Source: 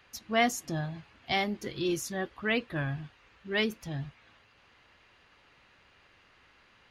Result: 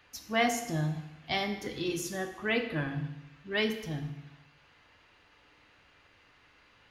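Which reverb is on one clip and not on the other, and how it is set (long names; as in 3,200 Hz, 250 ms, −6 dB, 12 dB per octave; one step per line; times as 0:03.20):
feedback delay network reverb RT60 0.91 s, low-frequency decay 1×, high-frequency decay 0.95×, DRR 4.5 dB
level −1.5 dB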